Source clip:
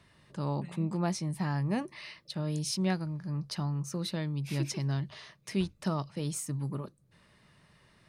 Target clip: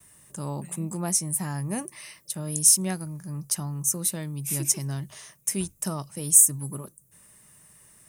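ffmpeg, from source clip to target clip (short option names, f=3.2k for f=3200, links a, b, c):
-af "aexciter=amount=13.5:drive=7.1:freq=6.6k,agate=range=-33dB:threshold=-58dB:ratio=3:detection=peak"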